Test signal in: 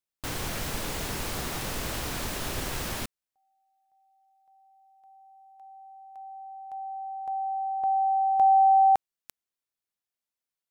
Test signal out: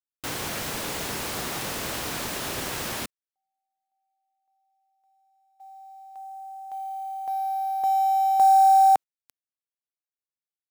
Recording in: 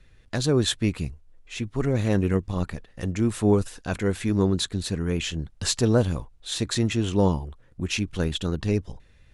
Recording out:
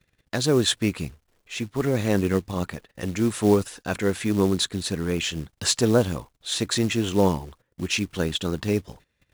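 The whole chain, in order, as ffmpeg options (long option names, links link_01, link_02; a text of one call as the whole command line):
ffmpeg -i in.wav -af "agate=range=-15dB:threshold=-52dB:ratio=16:release=85:detection=peak,acrusher=bits=6:mode=log:mix=0:aa=0.000001,highpass=frequency=190:poles=1,volume=3dB" out.wav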